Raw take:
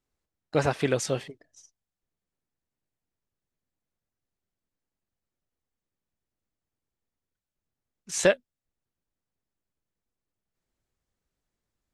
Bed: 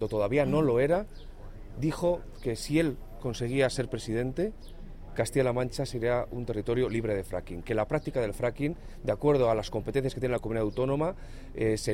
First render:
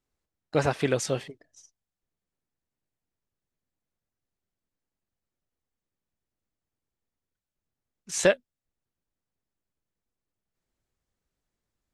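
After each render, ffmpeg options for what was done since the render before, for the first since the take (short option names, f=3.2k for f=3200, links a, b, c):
-af anull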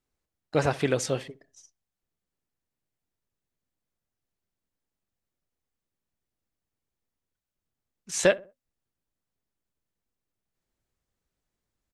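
-filter_complex "[0:a]asplit=2[a][b];[b]adelay=65,lowpass=f=1.1k:p=1,volume=-19dB,asplit=2[c][d];[d]adelay=65,lowpass=f=1.1k:p=1,volume=0.4,asplit=2[e][f];[f]adelay=65,lowpass=f=1.1k:p=1,volume=0.4[g];[a][c][e][g]amix=inputs=4:normalize=0"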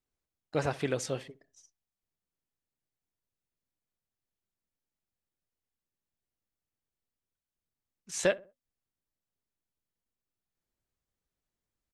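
-af "volume=-6dB"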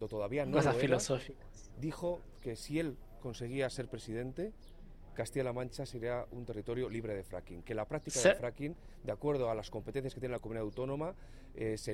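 -filter_complex "[1:a]volume=-10dB[a];[0:a][a]amix=inputs=2:normalize=0"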